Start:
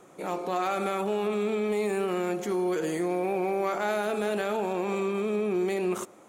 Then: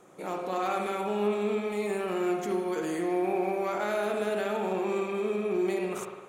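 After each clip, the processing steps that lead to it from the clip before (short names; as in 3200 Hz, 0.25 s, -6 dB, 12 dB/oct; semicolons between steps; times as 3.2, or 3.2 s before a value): spring tank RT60 1.2 s, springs 53 ms, chirp 60 ms, DRR 2.5 dB; gain -3 dB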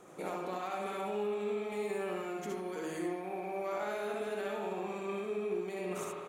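compressor 6:1, threshold -36 dBFS, peak gain reduction 13 dB; on a send: early reflections 65 ms -5 dB, 77 ms -5.5 dB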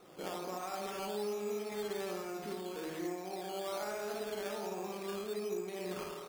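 decimation with a swept rate 9×, swing 60% 1.2 Hz; gain -2.5 dB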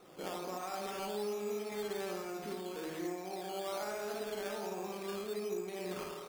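resonator 260 Hz, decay 0.91 s; gain +7.5 dB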